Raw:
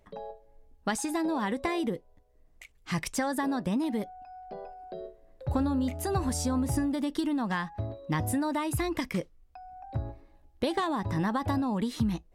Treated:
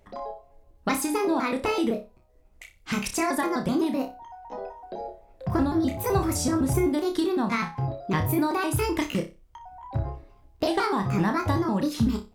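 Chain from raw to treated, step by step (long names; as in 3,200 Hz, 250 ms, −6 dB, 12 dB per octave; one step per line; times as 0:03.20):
pitch shifter gated in a rhythm +4 semitones, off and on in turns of 127 ms
flutter between parallel walls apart 5.2 metres, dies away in 0.27 s
level +4 dB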